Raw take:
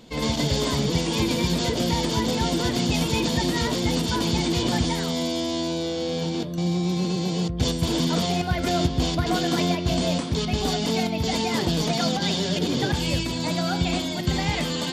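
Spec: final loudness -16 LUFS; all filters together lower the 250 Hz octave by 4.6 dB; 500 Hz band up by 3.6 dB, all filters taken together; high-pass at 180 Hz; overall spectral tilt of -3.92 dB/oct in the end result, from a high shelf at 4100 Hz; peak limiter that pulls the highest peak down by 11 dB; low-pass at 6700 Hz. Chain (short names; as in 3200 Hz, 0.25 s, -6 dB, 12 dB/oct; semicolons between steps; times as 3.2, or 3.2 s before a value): HPF 180 Hz; LPF 6700 Hz; bell 250 Hz -7 dB; bell 500 Hz +7 dB; high shelf 4100 Hz -9 dB; gain +14.5 dB; limiter -8 dBFS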